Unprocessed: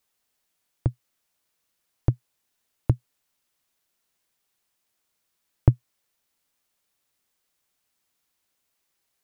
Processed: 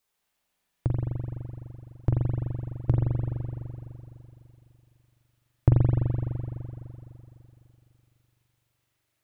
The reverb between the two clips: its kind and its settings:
spring reverb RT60 3 s, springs 42 ms, chirp 45 ms, DRR −4 dB
level −3 dB

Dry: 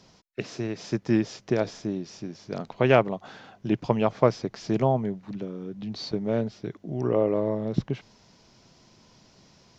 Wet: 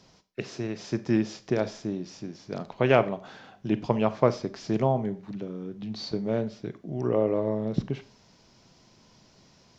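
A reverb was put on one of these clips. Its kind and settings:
four-comb reverb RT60 0.38 s, combs from 29 ms, DRR 13.5 dB
level −1.5 dB

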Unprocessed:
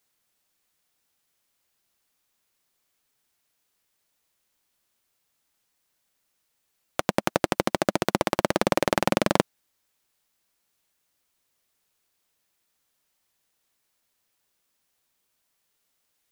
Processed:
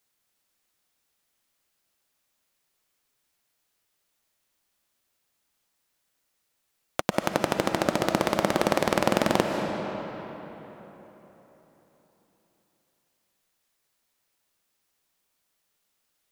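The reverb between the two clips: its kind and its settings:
comb and all-pass reverb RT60 4 s, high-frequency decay 0.65×, pre-delay 110 ms, DRR 4 dB
level −1.5 dB

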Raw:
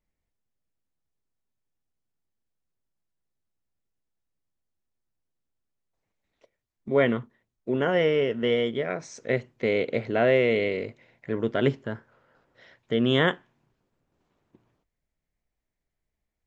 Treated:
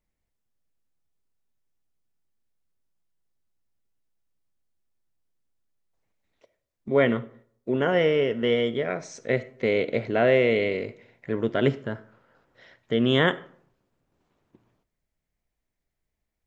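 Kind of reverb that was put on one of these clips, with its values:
comb and all-pass reverb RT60 0.59 s, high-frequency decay 0.55×, pre-delay 15 ms, DRR 17 dB
level +1 dB

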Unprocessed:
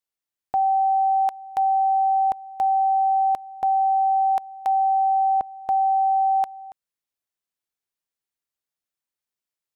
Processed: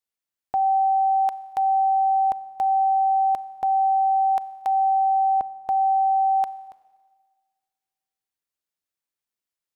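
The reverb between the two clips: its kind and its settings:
four-comb reverb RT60 1.6 s, combs from 29 ms, DRR 17 dB
level −1 dB

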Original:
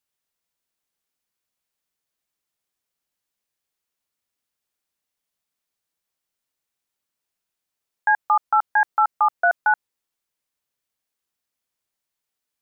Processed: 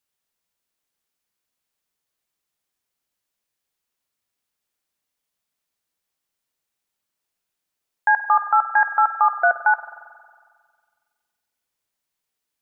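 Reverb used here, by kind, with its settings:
spring reverb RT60 1.8 s, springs 45 ms, chirp 55 ms, DRR 10.5 dB
level +1.5 dB

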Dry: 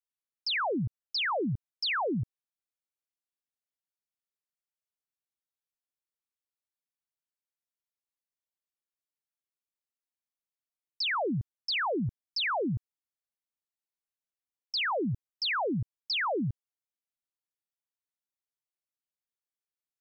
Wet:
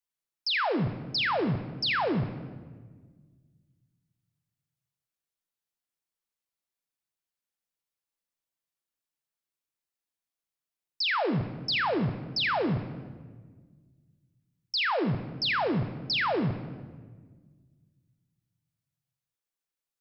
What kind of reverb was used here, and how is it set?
rectangular room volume 1,500 cubic metres, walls mixed, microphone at 0.73 metres
level +2 dB

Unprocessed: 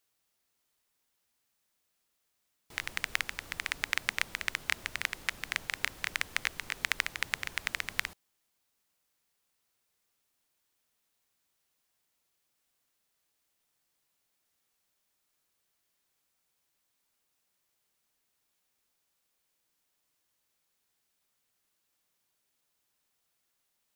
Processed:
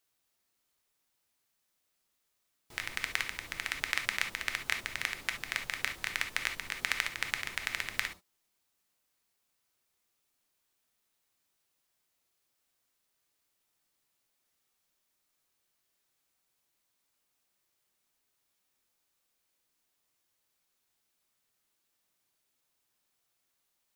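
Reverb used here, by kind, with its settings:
reverb whose tail is shaped and stops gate 90 ms flat, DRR 5.5 dB
level −1.5 dB

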